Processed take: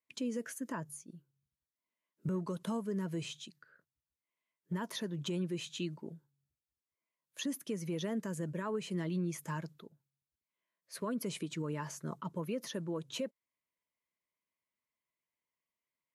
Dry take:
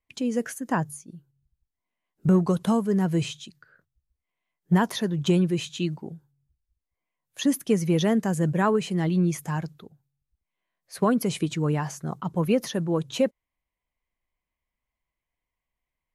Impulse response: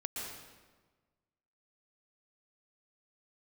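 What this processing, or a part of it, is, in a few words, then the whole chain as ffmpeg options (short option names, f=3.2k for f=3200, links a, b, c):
PA system with an anti-feedback notch: -af "highpass=170,asuperstop=centerf=760:order=8:qfactor=5.3,alimiter=limit=-22.5dB:level=0:latency=1:release=245,volume=-6dB"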